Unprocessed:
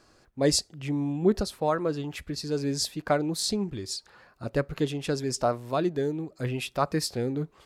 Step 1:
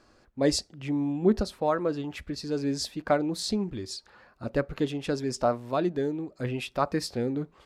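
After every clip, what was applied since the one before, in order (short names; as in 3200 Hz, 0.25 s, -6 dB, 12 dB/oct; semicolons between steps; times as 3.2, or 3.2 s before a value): high shelf 6300 Hz -9.5 dB; on a send at -20 dB: reverb RT60 0.20 s, pre-delay 3 ms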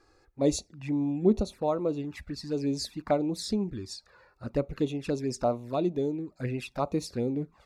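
notch 3100 Hz, Q 5.1; envelope flanger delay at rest 2.5 ms, full sweep at -25 dBFS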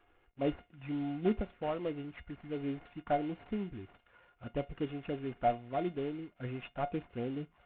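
CVSD 16 kbps; resonator 710 Hz, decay 0.15 s, harmonics all, mix 80%; gain +5.5 dB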